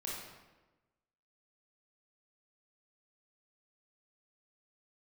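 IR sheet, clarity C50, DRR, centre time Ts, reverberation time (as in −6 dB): −1.0 dB, −5.0 dB, 76 ms, 1.2 s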